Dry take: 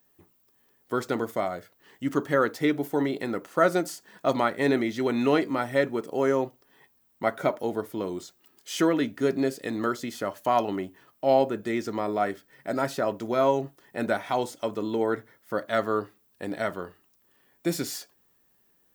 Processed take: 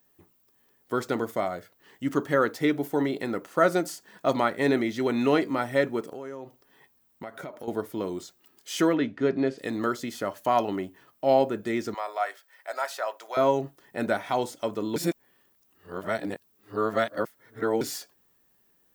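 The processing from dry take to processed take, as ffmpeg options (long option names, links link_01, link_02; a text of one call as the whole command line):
ffmpeg -i in.wav -filter_complex "[0:a]asettb=1/sr,asplit=3[link_01][link_02][link_03];[link_01]atrim=end=6.074[link_04];[link_02]atrim=start=6.07:end=7.68,asetpts=PTS-STARTPTS,afade=type=in:duration=0.004:curve=qsin,afade=type=out:start_time=1.606:duration=0.004:curve=qsin,acompressor=threshold=-35dB:ratio=6:attack=3.2:release=140:knee=1:detection=peak[link_05];[link_03]atrim=start=7.676[link_06];[link_04][link_05]acrossfade=duration=0.004:curve1=hsin:curve2=qsin[link_07];[link_07][link_06]acrossfade=duration=0.004:curve1=qsin:curve2=hsin,asettb=1/sr,asplit=3[link_08][link_09][link_10];[link_08]atrim=end=8.954[link_11];[link_09]atrim=start=8.95:end=9.58,asetpts=PTS-STARTPTS,afade=type=in:duration=0.004:curve=qsin,afade=type=out:start_time=0.626:duration=0.004:curve=qsin,lowpass=3500[link_12];[link_10]atrim=start=9.576[link_13];[link_11][link_12]acrossfade=duration=0.004:curve1=hsin:curve2=qsin[link_14];[link_14][link_13]acrossfade=duration=0.004:curve1=qsin:curve2=hsin,asettb=1/sr,asplit=3[link_15][link_16][link_17];[link_15]atrim=end=11.944[link_18];[link_16]atrim=start=11.94:end=13.37,asetpts=PTS-STARTPTS,afade=type=in:duration=0.004:curve=qsin,afade=type=out:start_time=1.426:duration=0.004:curve=qsin,highpass=frequency=650:width=0.5412,highpass=frequency=650:width=1.3066[link_19];[link_17]atrim=start=13.366[link_20];[link_18][link_19]acrossfade=duration=0.004:curve1=hsin:curve2=qsin[link_21];[link_21][link_20]acrossfade=duration=0.004:curve1=qsin:curve2=hsin,asplit=3[link_22][link_23][link_24];[link_22]atrim=end=14.962[link_25];[link_23]atrim=start=14.958:end=17.812,asetpts=PTS-STARTPTS,areverse[link_26];[link_24]atrim=start=17.808[link_27];[link_25][link_26]acrossfade=duration=0.004:curve1=hsin:curve2=hsin[link_28];[link_28][link_27]acrossfade=duration=0.004:curve1=hsin:curve2=hsin" out.wav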